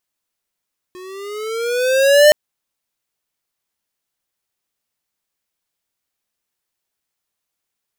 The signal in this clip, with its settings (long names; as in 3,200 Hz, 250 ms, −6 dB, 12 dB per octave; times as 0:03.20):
pitch glide with a swell square, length 1.37 s, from 361 Hz, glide +9 semitones, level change +28.5 dB, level −7 dB